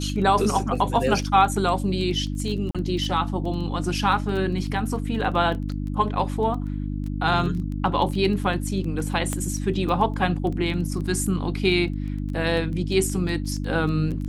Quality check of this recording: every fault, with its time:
surface crackle 12 per second −29 dBFS
mains hum 50 Hz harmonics 6 −28 dBFS
0:02.71–0:02.75: drop-out 36 ms
0:09.33: click −13 dBFS

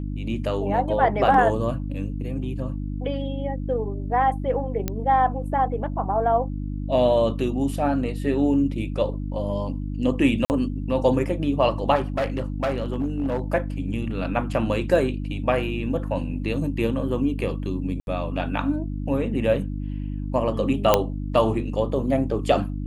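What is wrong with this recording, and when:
mains hum 50 Hz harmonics 6 −29 dBFS
0:04.88: click −11 dBFS
0:10.45–0:10.50: drop-out 49 ms
0:11.95–0:13.40: clipping −19.5 dBFS
0:18.00–0:18.07: drop-out 71 ms
0:20.94: click −2 dBFS

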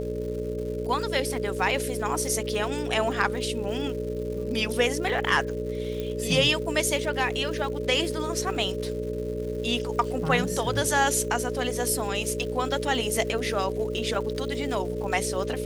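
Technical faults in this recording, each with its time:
mains buzz 60 Hz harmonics 10 −33 dBFS
surface crackle 260 per second −37 dBFS
whistle 430 Hz −31 dBFS
0:06.00: click −19 dBFS

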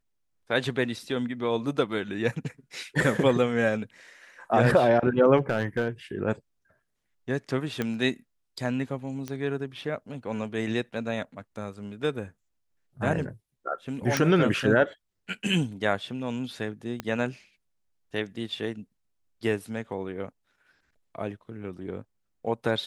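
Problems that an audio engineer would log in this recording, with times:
0:05.37–0:05.88: clipping −19 dBFS
0:07.82: click −15 dBFS
0:09.28: click −20 dBFS
0:14.17: click −9 dBFS
0:17.00: click −17 dBFS

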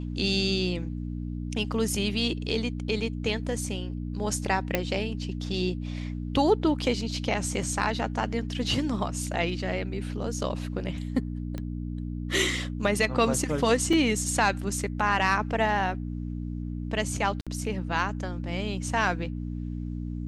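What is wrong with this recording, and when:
mains hum 60 Hz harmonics 5 −33 dBFS
0:04.75: click −10 dBFS
0:11.58: click −21 dBFS
0:13.93: drop-out 3.8 ms
0:17.41–0:17.47: drop-out 56 ms

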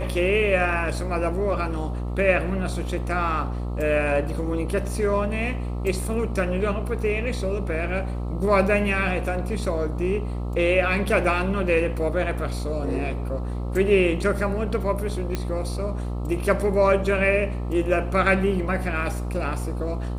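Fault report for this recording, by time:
mains buzz 60 Hz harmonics 22 −28 dBFS
0:15.35: click −12 dBFS

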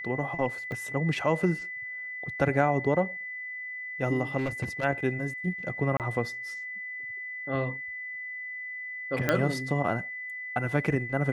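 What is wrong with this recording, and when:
whistle 2,000 Hz −35 dBFS
0:00.72: drop-out 2.2 ms
0:04.37–0:04.85: clipping −25 dBFS
0:05.97–0:06.00: drop-out 28 ms
0:09.29: click −10 dBFS

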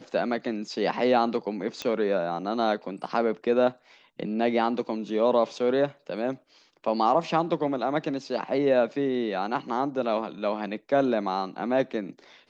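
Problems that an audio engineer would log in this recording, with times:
0:01.82: click −17 dBFS

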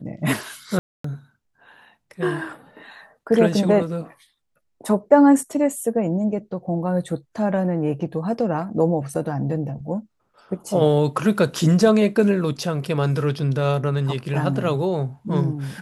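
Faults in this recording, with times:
0:00.79–0:01.04: drop-out 254 ms

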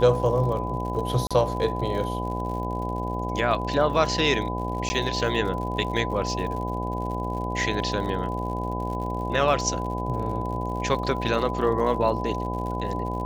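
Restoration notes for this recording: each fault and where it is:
mains buzz 60 Hz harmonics 14 −30 dBFS
surface crackle 75 per second −34 dBFS
whistle 1,000 Hz −31 dBFS
0:01.27–0:01.31: drop-out 36 ms
0:04.89–0:04.90: drop-out 10 ms

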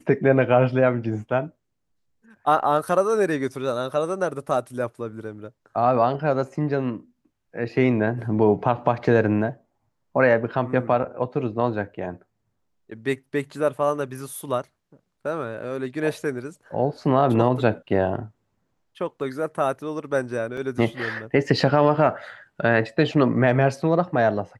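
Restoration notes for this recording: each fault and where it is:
0:20.57: drop-out 3.7 ms

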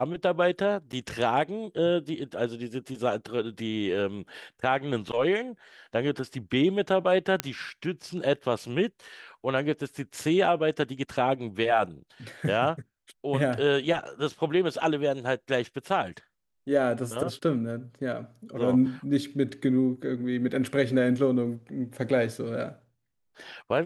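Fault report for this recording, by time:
0:00.92–0:00.93: drop-out 8.9 ms
0:07.40: click −9 dBFS

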